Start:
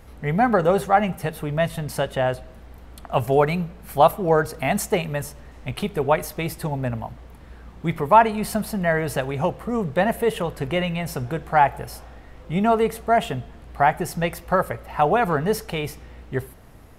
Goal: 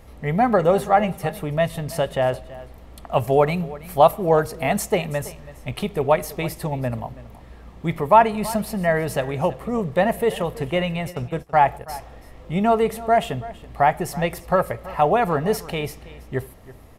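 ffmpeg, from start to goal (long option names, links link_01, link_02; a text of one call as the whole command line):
ffmpeg -i in.wav -filter_complex "[0:a]asplit=3[link_01][link_02][link_03];[link_01]afade=type=out:start_time=10.65:duration=0.02[link_04];[link_02]agate=range=-21dB:threshold=-28dB:ratio=16:detection=peak,afade=type=in:start_time=10.65:duration=0.02,afade=type=out:start_time=11.88:duration=0.02[link_05];[link_03]afade=type=in:start_time=11.88:duration=0.02[link_06];[link_04][link_05][link_06]amix=inputs=3:normalize=0,equalizer=frequency=590:width_type=o:width=0.39:gain=3,bandreject=frequency=1500:width=8.6,aecho=1:1:328:0.126" out.wav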